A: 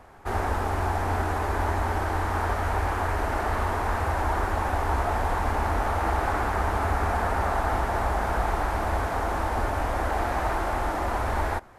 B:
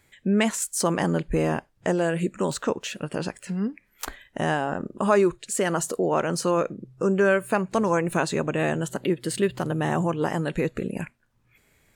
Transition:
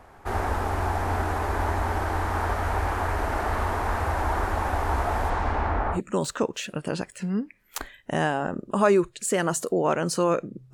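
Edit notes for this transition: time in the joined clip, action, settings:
A
5.29–6.01 s: low-pass 7.7 kHz -> 1.4 kHz
5.96 s: go over to B from 2.23 s, crossfade 0.10 s

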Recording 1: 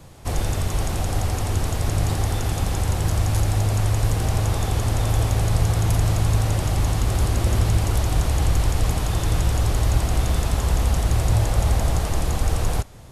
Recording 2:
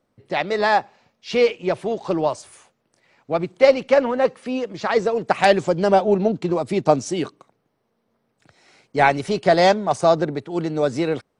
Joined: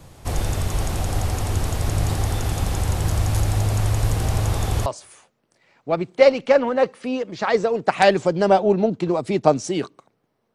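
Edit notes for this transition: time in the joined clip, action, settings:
recording 1
4.86 s: go over to recording 2 from 2.28 s

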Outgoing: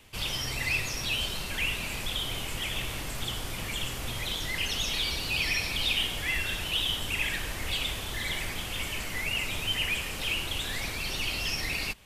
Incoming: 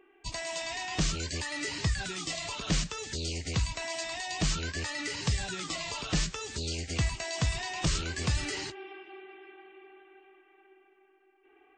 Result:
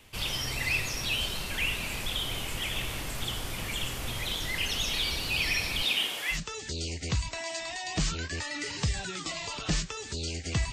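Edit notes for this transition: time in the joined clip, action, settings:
outgoing
5.82–6.40 s: high-pass 150 Hz -> 680 Hz
6.35 s: go over to incoming from 2.79 s, crossfade 0.10 s

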